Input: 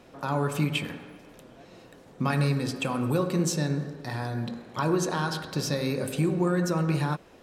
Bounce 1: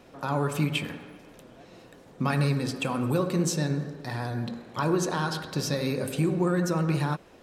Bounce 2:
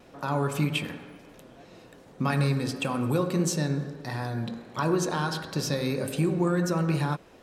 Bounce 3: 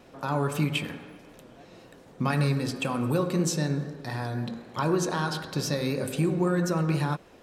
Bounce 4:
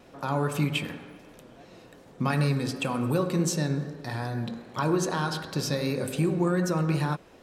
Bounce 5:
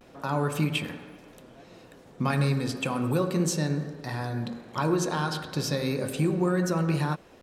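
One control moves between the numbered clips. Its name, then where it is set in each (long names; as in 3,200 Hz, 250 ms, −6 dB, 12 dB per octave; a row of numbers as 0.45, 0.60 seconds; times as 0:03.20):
pitch vibrato, speed: 15, 1.5, 3.9, 2.6, 0.33 Hertz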